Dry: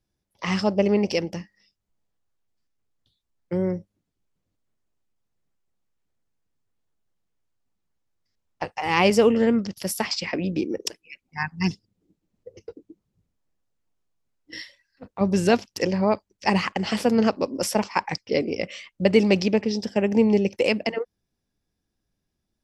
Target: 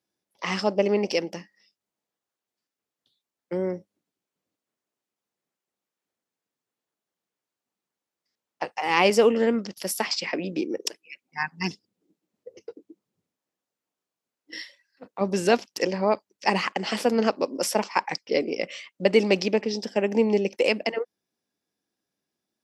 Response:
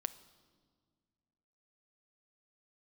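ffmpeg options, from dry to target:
-af "highpass=270"

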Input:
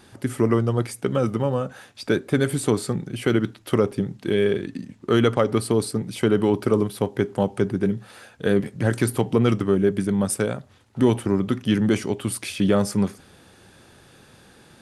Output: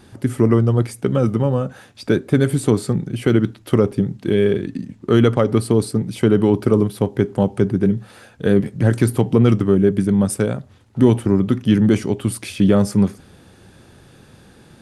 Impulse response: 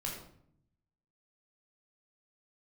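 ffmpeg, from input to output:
-af "lowshelf=f=380:g=8"

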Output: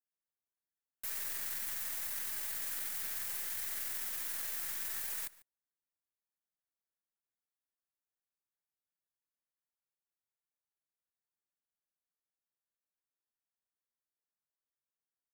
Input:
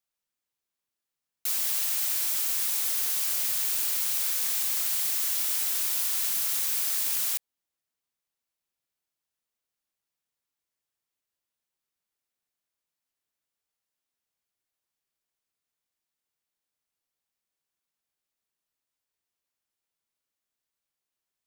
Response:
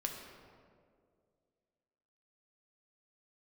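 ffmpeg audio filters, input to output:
-filter_complex "[0:a]equalizer=f=1.8k:t=o:w=0.79:g=12.5,flanger=delay=4.8:depth=3.5:regen=-65:speed=1:shape=triangular,atempo=1.4,acrossover=split=100|1400|7600[a][b][c][d];[c]acrusher=bits=4:dc=4:mix=0:aa=0.000001[e];[a][b][e][d]amix=inputs=4:normalize=0,asplit=2[f][g];[g]adelay=145.8,volume=-19dB,highshelf=f=4k:g=-3.28[h];[f][h]amix=inputs=2:normalize=0,volume=-6.5dB"

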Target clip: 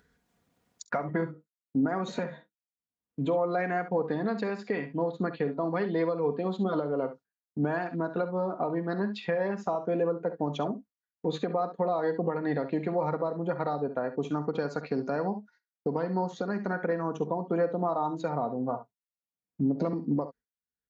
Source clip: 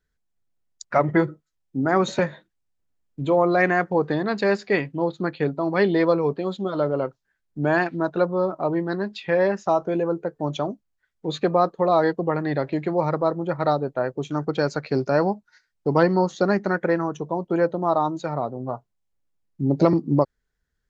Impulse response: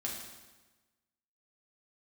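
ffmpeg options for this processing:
-af "acompressor=threshold=-22dB:ratio=6,highpass=96,highshelf=f=2.6k:g=-9,aecho=1:1:4.2:0.42,aecho=1:1:48|67:0.168|0.237,agate=range=-33dB:threshold=-41dB:ratio=3:detection=peak,acompressor=mode=upward:threshold=-34dB:ratio=2.5,alimiter=limit=-18.5dB:level=0:latency=1:release=361"

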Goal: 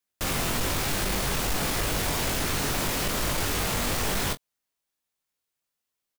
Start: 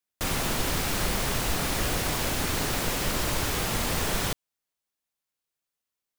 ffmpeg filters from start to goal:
-af "volume=26dB,asoftclip=hard,volume=-26dB,aecho=1:1:21|43:0.501|0.133,volume=1.5dB"

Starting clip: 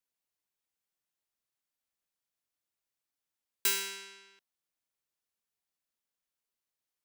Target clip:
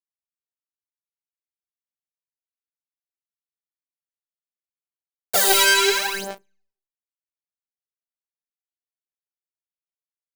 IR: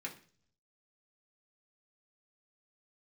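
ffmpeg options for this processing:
-filter_complex "[0:a]lowshelf=f=300:t=q:w=1.5:g=-9.5,bandreject=f=50:t=h:w=6,bandreject=f=100:t=h:w=6,bandreject=f=150:t=h:w=6,bandreject=f=200:t=h:w=6,atempo=0.68,asplit=2[a][b];[b]asoftclip=type=hard:threshold=-33dB,volume=-4dB[c];[a][c]amix=inputs=2:normalize=0,acrusher=bits=7:mix=0:aa=0.000001,asplit=2[d][e];[1:a]atrim=start_sample=2205,adelay=7[f];[e][f]afir=irnorm=-1:irlink=0,volume=-16.5dB[g];[d][g]amix=inputs=2:normalize=0,aeval=exprs='0.168*sin(PI/2*6.31*val(0)/0.168)':c=same,equalizer=f=490:w=0.77:g=14,asplit=2[h][i];[i]adelay=37,volume=-10dB[j];[h][j]amix=inputs=2:normalize=0,aphaser=in_gain=1:out_gain=1:delay=3.2:decay=0.78:speed=0.79:type=sinusoidal,volume=-4dB"

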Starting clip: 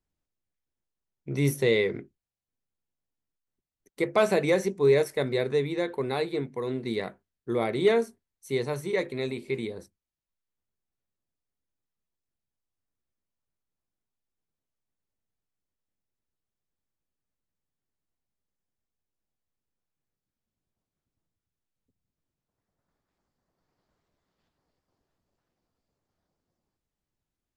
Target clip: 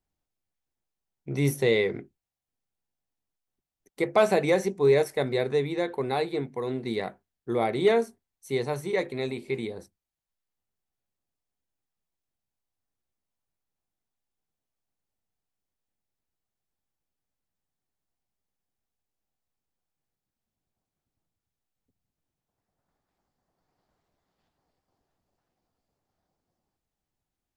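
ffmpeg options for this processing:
-af "equalizer=f=770:t=o:w=0.38:g=6"

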